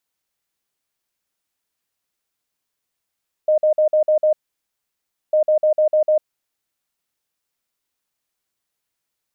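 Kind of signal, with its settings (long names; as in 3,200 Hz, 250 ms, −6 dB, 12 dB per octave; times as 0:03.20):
beeps in groups sine 616 Hz, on 0.10 s, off 0.05 s, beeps 6, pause 1.00 s, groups 2, −12 dBFS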